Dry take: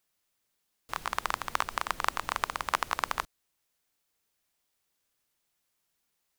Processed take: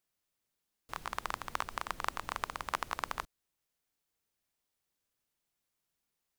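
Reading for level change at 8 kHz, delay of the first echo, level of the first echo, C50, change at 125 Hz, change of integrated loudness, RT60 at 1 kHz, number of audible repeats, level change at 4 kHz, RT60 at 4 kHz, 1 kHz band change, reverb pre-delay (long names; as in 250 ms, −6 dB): −7.0 dB, no echo audible, no echo audible, no reverb audible, −2.5 dB, −6.5 dB, no reverb audible, no echo audible, −7.0 dB, no reverb audible, −6.0 dB, no reverb audible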